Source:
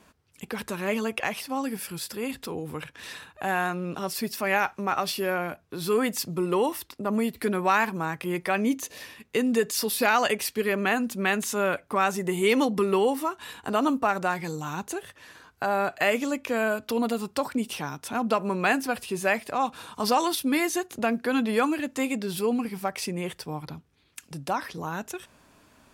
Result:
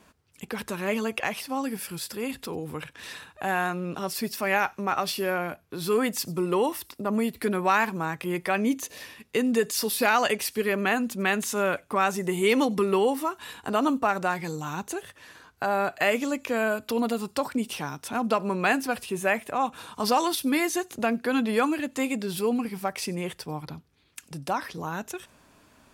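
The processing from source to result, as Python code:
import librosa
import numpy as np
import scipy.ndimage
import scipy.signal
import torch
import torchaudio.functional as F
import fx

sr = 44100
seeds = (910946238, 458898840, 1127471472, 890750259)

y = fx.peak_eq(x, sr, hz=4700.0, db=-12.0, octaves=0.38, at=(19.09, 19.78))
y = fx.echo_wet_highpass(y, sr, ms=94, feedback_pct=34, hz=5100.0, wet_db=-21)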